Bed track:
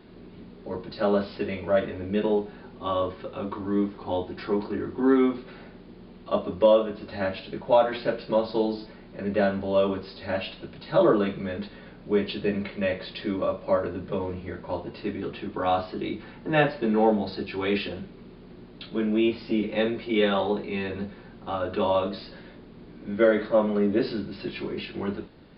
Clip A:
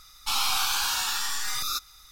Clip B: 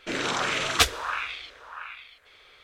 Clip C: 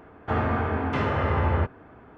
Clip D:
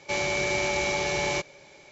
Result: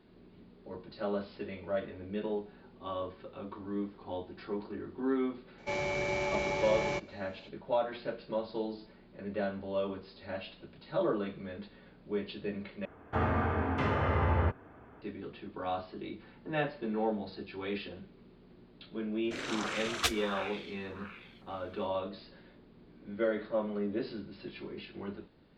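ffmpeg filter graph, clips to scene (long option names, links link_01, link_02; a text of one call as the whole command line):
ffmpeg -i bed.wav -i cue0.wav -i cue1.wav -i cue2.wav -i cue3.wav -filter_complex "[0:a]volume=-11dB[link_01];[4:a]lowpass=frequency=1700:poles=1[link_02];[link_01]asplit=2[link_03][link_04];[link_03]atrim=end=12.854[link_05];[3:a]atrim=end=2.17,asetpts=PTS-STARTPTS,volume=-5dB[link_06];[link_04]atrim=start=15.016[link_07];[link_02]atrim=end=1.91,asetpts=PTS-STARTPTS,volume=-4dB,afade=type=in:duration=0.004:curve=hsin,afade=type=out:start_time=1.906:duration=0.004:curve=hsin,adelay=5580[link_08];[2:a]atrim=end=2.63,asetpts=PTS-STARTPTS,volume=-10dB,afade=type=in:duration=0.004:curve=hsin,afade=type=out:start_time=2.626:duration=0.004:curve=hsin,adelay=848484S[link_09];[link_05][link_06]acrossfade=duration=0.004:curve1=hsin:curve2=hsin[link_10];[link_10][link_07]acrossfade=duration=0.004:curve1=hsin:curve2=hsin[link_11];[link_11][link_08][link_09]amix=inputs=3:normalize=0" out.wav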